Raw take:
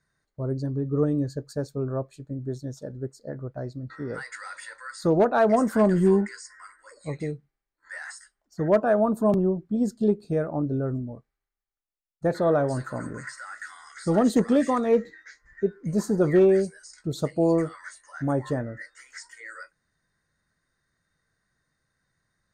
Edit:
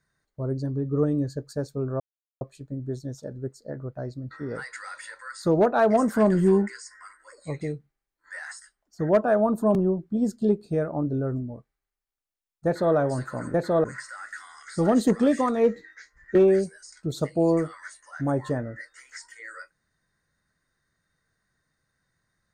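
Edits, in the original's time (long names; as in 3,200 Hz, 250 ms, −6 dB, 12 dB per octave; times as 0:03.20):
0:02.00: splice in silence 0.41 s
0:12.25–0:12.55: duplicate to 0:13.13
0:15.64–0:16.36: remove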